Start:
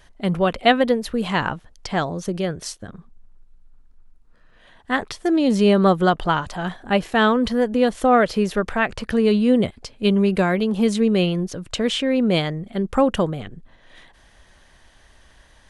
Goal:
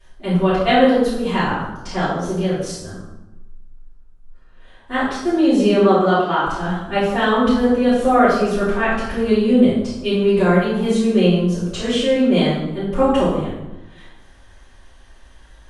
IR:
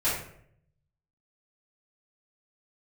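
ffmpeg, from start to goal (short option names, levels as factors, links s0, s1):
-filter_complex "[0:a]asplit=3[s0][s1][s2];[s0]afade=t=out:st=5.69:d=0.02[s3];[s1]highpass=240,lowpass=6000,afade=t=in:st=5.69:d=0.02,afade=t=out:st=6.44:d=0.02[s4];[s2]afade=t=in:st=6.44:d=0.02[s5];[s3][s4][s5]amix=inputs=3:normalize=0[s6];[1:a]atrim=start_sample=2205,asetrate=25578,aresample=44100[s7];[s6][s7]afir=irnorm=-1:irlink=0,volume=0.237"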